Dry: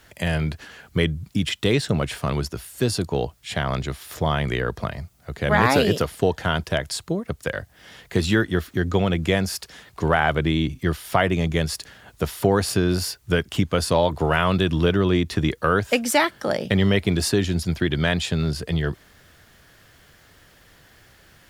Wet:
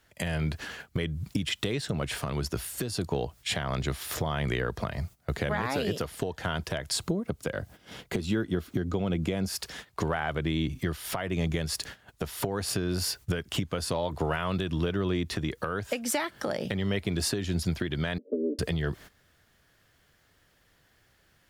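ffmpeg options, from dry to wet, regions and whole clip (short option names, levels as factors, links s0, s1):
-filter_complex "[0:a]asettb=1/sr,asplit=3[s0][s1][s2];[s0]atrim=end=6.974[s3];[s1]atrim=start=6.97:end=9.48,asetpts=PTS-STARTPTS,afade=t=in:d=0.004:c=qsin,afade=t=out:st=2.506:d=0.004:c=qsin,equalizer=f=240:t=o:w=2.6:g=6.5,bandreject=f=1800:w=9.2[s4];[s2]atrim=start=9.476[s5];[s3][s4]acrossfade=d=0.004:c1=hsin:c2=qsin[s6];[s6][s5]acrossfade=d=0.004:c1=qsin:c2=hsin,asettb=1/sr,asplit=3[s7][s8][s9];[s7]atrim=end=18.184[s10];[s8]atrim=start=18.18:end=18.59,asetpts=PTS-STARTPTS,afade=t=in:d=0.004:c=qsin,afade=t=out:st=0.406:d=0.004:c=qsin,asuperpass=centerf=360:order=20:qfactor=0.97,aecho=1:1:6.8:0.78,atrim=end_sample=18081[s11];[s9]atrim=start=18.586[s12];[s10][s11]acrossfade=d=0.004:c1=hsin:c2=qsin[s13];[s13][s12]acrossfade=d=0.004:c1=qsin:c2=hsin,agate=range=0.158:threshold=0.00708:ratio=16:detection=peak,acompressor=threshold=0.0398:ratio=6,alimiter=limit=0.0944:level=0:latency=1:release=238,volume=1.5"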